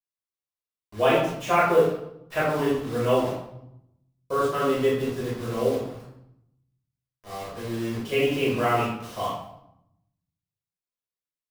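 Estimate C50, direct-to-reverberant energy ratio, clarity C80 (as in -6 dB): 1.0 dB, -10.0 dB, 5.0 dB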